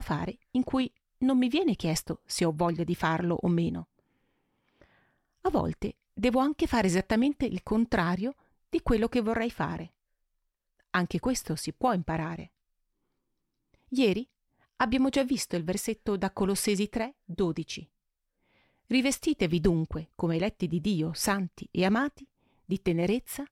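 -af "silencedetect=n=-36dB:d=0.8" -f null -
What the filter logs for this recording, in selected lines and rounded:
silence_start: 3.82
silence_end: 5.45 | silence_duration: 1.63
silence_start: 9.84
silence_end: 10.94 | silence_duration: 1.10
silence_start: 12.43
silence_end: 13.92 | silence_duration: 1.49
silence_start: 17.80
silence_end: 18.91 | silence_duration: 1.11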